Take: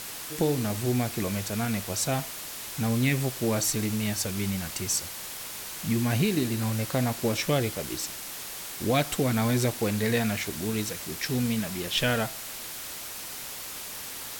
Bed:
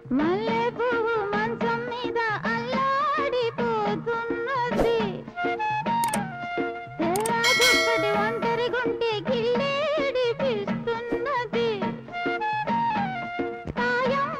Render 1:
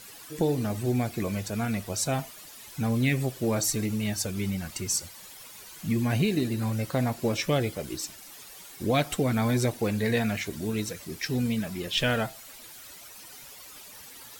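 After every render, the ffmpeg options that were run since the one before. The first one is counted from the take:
ffmpeg -i in.wav -af "afftdn=noise_reduction=12:noise_floor=-39" out.wav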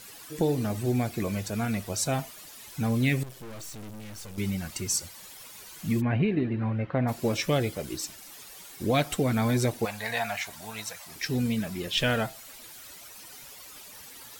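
ffmpeg -i in.wav -filter_complex "[0:a]asettb=1/sr,asplit=3[link_01][link_02][link_03];[link_01]atrim=end=3.234[link_04];[link_02]atrim=start=3.23:end=4.38,asetpts=PTS-STARTPTS,afade=type=in:duration=0.004:curve=qsin,afade=type=out:start_time=1.146:duration=0.004:curve=qsin,aeval=exprs='(tanh(112*val(0)+0.75)-tanh(0.75))/112':channel_layout=same[link_05];[link_03]atrim=start=4.376[link_06];[link_04][link_05]acrossfade=duration=0.004:curve1=hsin:curve2=qsin[link_07];[link_07][link_06]acrossfade=duration=0.004:curve1=qsin:curve2=hsin,asplit=3[link_08][link_09][link_10];[link_08]afade=type=out:start_time=6:duration=0.02[link_11];[link_09]lowpass=frequency=2500:width=0.5412,lowpass=frequency=2500:width=1.3066,afade=type=in:start_time=6:duration=0.02,afade=type=out:start_time=7.07:duration=0.02[link_12];[link_10]afade=type=in:start_time=7.07:duration=0.02[link_13];[link_11][link_12][link_13]amix=inputs=3:normalize=0,asettb=1/sr,asplit=3[link_14][link_15][link_16];[link_14]atrim=end=9.854[link_17];[link_15]atrim=start=9.85:end=11.16,asetpts=PTS-STARTPTS,afade=type=in:duration=0.004:curve=qsin,afade=type=out:start_time=1.306:duration=0.004:curve=qsin,lowshelf=frequency=530:width_type=q:width=3:gain=-12.5[link_18];[link_16]atrim=start=11.156[link_19];[link_17][link_18]acrossfade=duration=0.004:curve1=hsin:curve2=qsin[link_20];[link_20][link_19]acrossfade=duration=0.004:curve1=qsin:curve2=hsin" out.wav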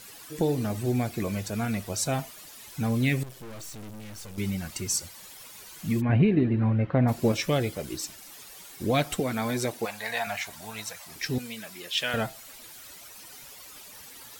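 ffmpeg -i in.wav -filter_complex "[0:a]asettb=1/sr,asplit=3[link_01][link_02][link_03];[link_01]atrim=end=6.094[link_04];[link_02]atrim=start=6.09:end=7.32,asetpts=PTS-STARTPTS,afade=type=in:duration=0.004:curve=qsin,afade=type=out:start_time=1.226:duration=0.004:curve=qsin,lowshelf=frequency=480:gain=5.5[link_05];[link_03]atrim=start=7.316[link_06];[link_04][link_05]acrossfade=duration=0.004:curve1=hsin:curve2=qsin[link_07];[link_07][link_06]acrossfade=duration=0.004:curve1=qsin:curve2=hsin,asettb=1/sr,asplit=3[link_08][link_09][link_10];[link_08]atrim=end=9.204[link_11];[link_09]atrim=start=9.2:end=10.27,asetpts=PTS-STARTPTS,afade=type=in:duration=0.004:curve=qsin,afade=type=out:start_time=1.066:duration=0.004:curve=qsin,highpass=frequency=290:poles=1[link_12];[link_10]atrim=start=10.266[link_13];[link_11][link_12]acrossfade=duration=0.004:curve1=hsin:curve2=qsin[link_14];[link_14][link_13]acrossfade=duration=0.004:curve1=qsin:curve2=hsin,asettb=1/sr,asplit=3[link_15][link_16][link_17];[link_15]atrim=end=11.384[link_18];[link_16]atrim=start=11.38:end=12.14,asetpts=PTS-STARTPTS,afade=type=in:duration=0.004:curve=qsin,afade=type=out:start_time=0.756:duration=0.004:curve=qsin,highpass=frequency=1100:poles=1[link_19];[link_17]atrim=start=12.136[link_20];[link_18][link_19]acrossfade=duration=0.004:curve1=hsin:curve2=qsin[link_21];[link_21][link_20]acrossfade=duration=0.004:curve1=qsin:curve2=hsin" out.wav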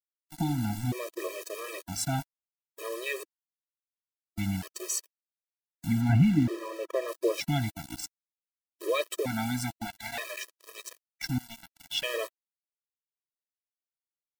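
ffmpeg -i in.wav -af "aeval=exprs='val(0)*gte(abs(val(0)),0.0237)':channel_layout=same,afftfilt=real='re*gt(sin(2*PI*0.54*pts/sr)*(1-2*mod(floor(b*sr/1024/330),2)),0)':imag='im*gt(sin(2*PI*0.54*pts/sr)*(1-2*mod(floor(b*sr/1024/330),2)),0)':win_size=1024:overlap=0.75" out.wav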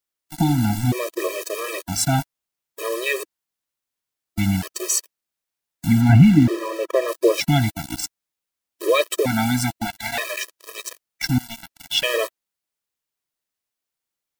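ffmpeg -i in.wav -af "volume=10.5dB,alimiter=limit=-3dB:level=0:latency=1" out.wav

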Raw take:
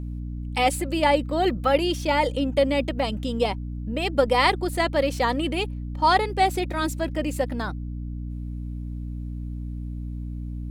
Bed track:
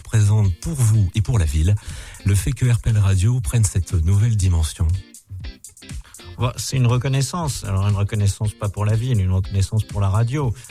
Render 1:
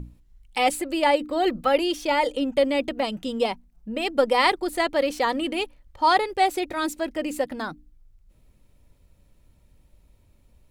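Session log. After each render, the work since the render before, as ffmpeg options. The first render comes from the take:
ffmpeg -i in.wav -af "bandreject=frequency=60:width_type=h:width=6,bandreject=frequency=120:width_type=h:width=6,bandreject=frequency=180:width_type=h:width=6,bandreject=frequency=240:width_type=h:width=6,bandreject=frequency=300:width_type=h:width=6" out.wav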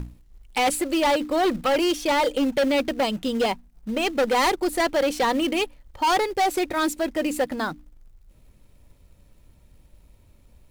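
ffmpeg -i in.wav -filter_complex "[0:a]asplit=2[link_01][link_02];[link_02]acrusher=bits=3:mode=log:mix=0:aa=0.000001,volume=-5dB[link_03];[link_01][link_03]amix=inputs=2:normalize=0,asoftclip=type=hard:threshold=-17.5dB" out.wav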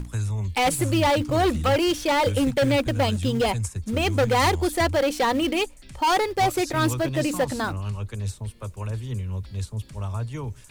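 ffmpeg -i in.wav -i bed.wav -filter_complex "[1:a]volume=-11dB[link_01];[0:a][link_01]amix=inputs=2:normalize=0" out.wav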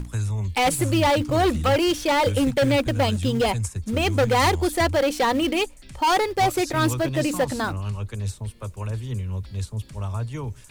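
ffmpeg -i in.wav -af "volume=1dB" out.wav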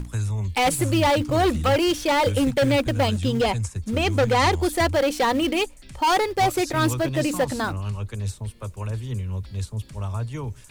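ffmpeg -i in.wav -filter_complex "[0:a]asettb=1/sr,asplit=3[link_01][link_02][link_03];[link_01]atrim=end=3.084[link_04];[link_02]atrim=start=3.08:end=4.52,asetpts=PTS-STARTPTS,afade=type=in:duration=0.004:curve=qsin,afade=type=out:start_time=1.436:duration=0.004:curve=qsin,acrossover=split=8200[link_05][link_06];[link_06]acompressor=threshold=-47dB:ratio=4:attack=1:release=60[link_07];[link_05][link_07]amix=inputs=2:normalize=0[link_08];[link_03]atrim=start=4.516[link_09];[link_04][link_08]acrossfade=duration=0.004:curve1=hsin:curve2=qsin[link_10];[link_10][link_09]acrossfade=duration=0.004:curve1=qsin:curve2=hsin" out.wav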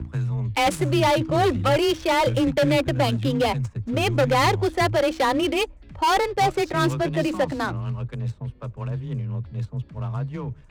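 ffmpeg -i in.wav -af "afreqshift=21,adynamicsmooth=sensitivity=6:basefreq=1500" out.wav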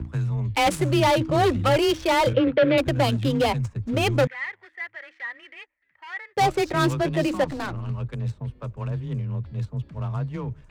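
ffmpeg -i in.wav -filter_complex "[0:a]asettb=1/sr,asplit=3[link_01][link_02][link_03];[link_01]atrim=end=2.334[link_04];[link_02]atrim=start=2.33:end=2.78,asetpts=PTS-STARTPTS,afade=type=in:duration=0.004:curve=qsin,afade=type=out:start_time=0.446:duration=0.004:curve=qsin,highpass=110,equalizer=frequency=160:width_type=q:width=4:gain=-10,equalizer=frequency=480:width_type=q:width=4:gain=9,equalizer=frequency=850:width_type=q:width=4:gain=-6,equalizer=frequency=1400:width_type=q:width=4:gain=4,lowpass=frequency=3400:width=0.5412,lowpass=frequency=3400:width=1.3066[link_05];[link_03]atrim=start=2.776[link_06];[link_04][link_05]acrossfade=duration=0.004:curve1=hsin:curve2=qsin[link_07];[link_07][link_06]acrossfade=duration=0.004:curve1=qsin:curve2=hsin,asettb=1/sr,asplit=3[link_08][link_09][link_10];[link_08]atrim=end=4.274[link_11];[link_09]atrim=start=4.27:end=6.37,asetpts=PTS-STARTPTS,afade=type=in:duration=0.004:curve=qsin,afade=type=out:start_time=2.096:duration=0.004:curve=qsin,bandpass=frequency=1900:width_type=q:width=9.9[link_12];[link_10]atrim=start=6.366[link_13];[link_11][link_12]acrossfade=duration=0.004:curve1=hsin:curve2=qsin[link_14];[link_14][link_13]acrossfade=duration=0.004:curve1=qsin:curve2=hsin,asettb=1/sr,asplit=3[link_15][link_16][link_17];[link_15]atrim=end=7.444[link_18];[link_16]atrim=start=7.44:end=7.9,asetpts=PTS-STARTPTS,afade=type=in:duration=0.004:curve=qsin,afade=type=out:start_time=0.456:duration=0.004:curve=qsin,aeval=exprs='(tanh(15.8*val(0)+0.5)-tanh(0.5))/15.8':channel_layout=same[link_19];[link_17]atrim=start=7.896[link_20];[link_18][link_19]acrossfade=duration=0.004:curve1=hsin:curve2=qsin[link_21];[link_21][link_20]acrossfade=duration=0.004:curve1=qsin:curve2=hsin" out.wav

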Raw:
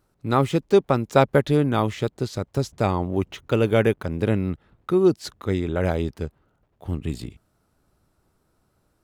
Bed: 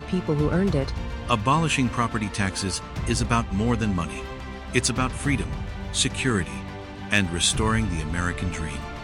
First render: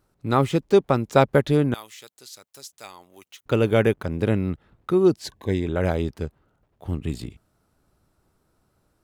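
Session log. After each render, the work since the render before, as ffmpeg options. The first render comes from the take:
ffmpeg -i in.wav -filter_complex "[0:a]asettb=1/sr,asplit=3[link_01][link_02][link_03];[link_01]atrim=end=1.744[link_04];[link_02]atrim=start=1.74:end=3.46,asetpts=PTS-STARTPTS,afade=type=in:duration=0.004:curve=qsin,afade=type=out:start_time=1.716:duration=0.004:curve=qsin,aderivative[link_05];[link_03]atrim=start=3.456[link_06];[link_04][link_05]acrossfade=duration=0.004:curve1=hsin:curve2=qsin[link_07];[link_07][link_06]acrossfade=duration=0.004:curve1=qsin:curve2=hsin,asettb=1/sr,asplit=3[link_08][link_09][link_10];[link_08]atrim=end=5.244[link_11];[link_09]atrim=start=5.24:end=5.67,asetpts=PTS-STARTPTS,afade=type=in:duration=0.004:curve=qsin,afade=type=out:start_time=0.426:duration=0.004:curve=qsin,asuperstop=centerf=1300:order=20:qfactor=3.6[link_12];[link_10]atrim=start=5.666[link_13];[link_11][link_12]acrossfade=duration=0.004:curve1=hsin:curve2=qsin[link_14];[link_14][link_13]acrossfade=duration=0.004:curve1=qsin:curve2=hsin" out.wav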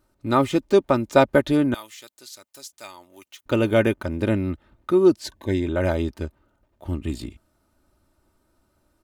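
ffmpeg -i in.wav -af "aecho=1:1:3.3:0.54" out.wav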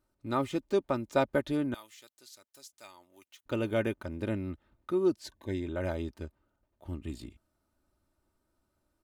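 ffmpeg -i in.wav -af "volume=-11dB" out.wav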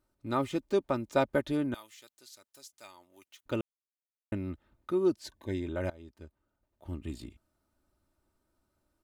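ffmpeg -i in.wav -filter_complex "[0:a]asplit=4[link_01][link_02][link_03][link_04];[link_01]atrim=end=3.61,asetpts=PTS-STARTPTS,afade=type=out:start_time=3.606:duration=0.004:curve=hsin[link_05];[link_02]atrim=start=3.61:end=4.32,asetpts=PTS-STARTPTS,volume=0[link_06];[link_03]atrim=start=4.32:end=5.9,asetpts=PTS-STARTPTS,afade=type=in:duration=0.004:curve=hsin,afade=type=out:start_time=1.576:duration=0.004:curve=hsin:silence=0.0891251[link_07];[link_04]atrim=start=5.9,asetpts=PTS-STARTPTS,afade=type=in:duration=1.06:silence=0.0891251[link_08];[link_05][link_06][link_07][link_08]concat=n=4:v=0:a=1" out.wav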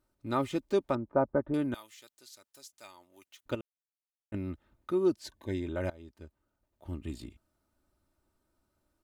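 ffmpeg -i in.wav -filter_complex "[0:a]asettb=1/sr,asplit=3[link_01][link_02][link_03];[link_01]atrim=end=0.954[link_04];[link_02]atrim=start=0.95:end=1.54,asetpts=PTS-STARTPTS,afade=type=in:duration=0.004:curve=qsin,afade=type=out:start_time=0.586:duration=0.004:curve=qsin,lowpass=frequency=1300:width=0.5412,lowpass=frequency=1300:width=1.3066[link_05];[link_03]atrim=start=1.536[link_06];[link_04][link_05]acrossfade=duration=0.004:curve1=hsin:curve2=qsin[link_07];[link_07][link_06]acrossfade=duration=0.004:curve1=qsin:curve2=hsin,asplit=3[link_08][link_09][link_10];[link_08]atrim=end=3.552[link_11];[link_09]atrim=start=3.548:end=4.342,asetpts=PTS-STARTPTS,volume=-9.5dB[link_12];[link_10]atrim=start=4.338[link_13];[link_11][link_12]acrossfade=duration=0.004:curve1=hsin:curve2=hsin[link_14];[link_14][link_13]acrossfade=duration=0.004:curve1=hsin:curve2=hsin" out.wav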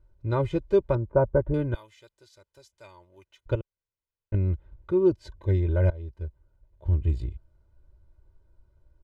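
ffmpeg -i in.wav -af "aemphasis=mode=reproduction:type=riaa,aecho=1:1:2:0.82" out.wav

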